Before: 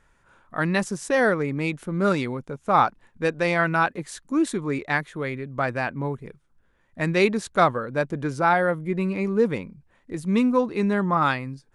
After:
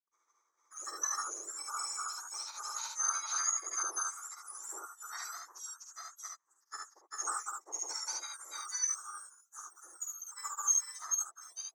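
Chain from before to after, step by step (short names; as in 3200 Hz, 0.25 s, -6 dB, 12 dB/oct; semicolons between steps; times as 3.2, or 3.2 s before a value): spectrum mirrored in octaves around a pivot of 1800 Hz; grains 0.1 s, grains 20/s, spray 0.611 s; double band-pass 2700 Hz, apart 2.5 oct; on a send: early reflections 49 ms -5 dB, 72 ms -3.5 dB; on the sum: gain +1 dB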